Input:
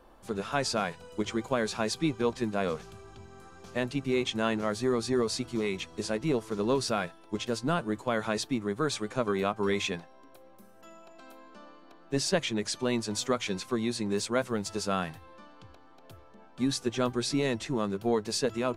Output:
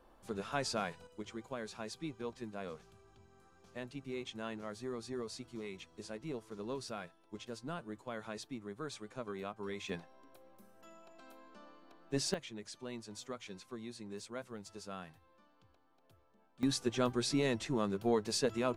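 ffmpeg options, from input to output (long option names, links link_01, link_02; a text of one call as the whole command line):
ffmpeg -i in.wav -af "asetnsamples=nb_out_samples=441:pad=0,asendcmd='1.07 volume volume -14dB;9.89 volume volume -6dB;12.34 volume volume -16dB;16.63 volume volume -4dB',volume=-7dB" out.wav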